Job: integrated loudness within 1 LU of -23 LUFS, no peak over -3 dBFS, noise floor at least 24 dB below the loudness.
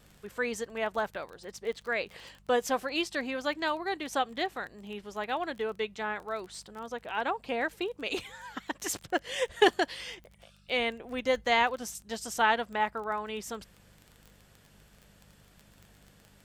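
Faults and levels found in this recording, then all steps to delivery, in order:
ticks 20/s; hum 50 Hz; harmonics up to 200 Hz; hum level -61 dBFS; loudness -32.0 LUFS; peak -9.5 dBFS; loudness target -23.0 LUFS
-> de-click; de-hum 50 Hz, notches 4; gain +9 dB; limiter -3 dBFS

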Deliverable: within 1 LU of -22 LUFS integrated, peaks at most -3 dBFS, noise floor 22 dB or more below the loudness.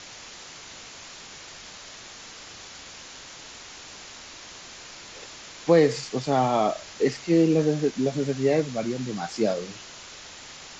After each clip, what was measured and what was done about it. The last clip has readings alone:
noise floor -44 dBFS; noise floor target -46 dBFS; loudness -24.0 LUFS; peak -7.5 dBFS; loudness target -22.0 LUFS
-> noise print and reduce 6 dB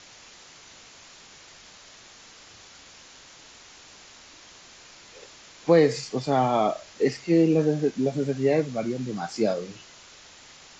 noise floor -50 dBFS; loudness -24.5 LUFS; peak -7.5 dBFS; loudness target -22.0 LUFS
-> gain +2.5 dB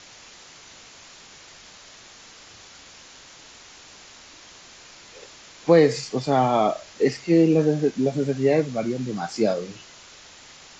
loudness -22.0 LUFS; peak -5.0 dBFS; noise floor -47 dBFS

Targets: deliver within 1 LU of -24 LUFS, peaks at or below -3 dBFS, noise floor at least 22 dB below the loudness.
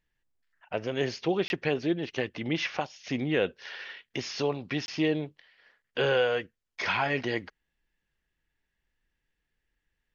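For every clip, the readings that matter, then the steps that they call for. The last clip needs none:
dropouts 2; longest dropout 21 ms; loudness -30.0 LUFS; peak -13.0 dBFS; loudness target -24.0 LUFS
-> interpolate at 1.48/4.86, 21 ms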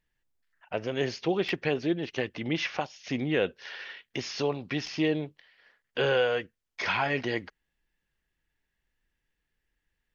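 dropouts 0; loudness -30.0 LUFS; peak -13.0 dBFS; loudness target -24.0 LUFS
-> gain +6 dB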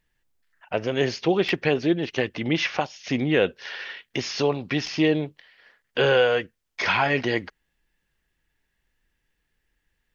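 loudness -24.0 LUFS; peak -7.0 dBFS; noise floor -76 dBFS

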